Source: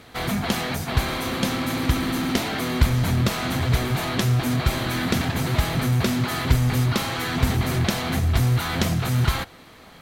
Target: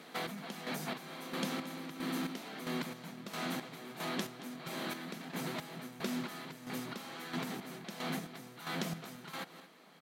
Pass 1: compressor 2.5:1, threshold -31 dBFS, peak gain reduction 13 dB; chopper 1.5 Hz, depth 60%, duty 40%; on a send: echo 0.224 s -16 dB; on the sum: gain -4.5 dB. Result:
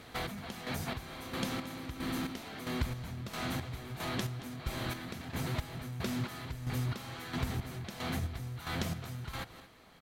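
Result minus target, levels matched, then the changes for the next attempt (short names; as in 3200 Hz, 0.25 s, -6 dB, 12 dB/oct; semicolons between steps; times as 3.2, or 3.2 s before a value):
125 Hz band +8.0 dB
add after compressor: elliptic high-pass 160 Hz, stop band 40 dB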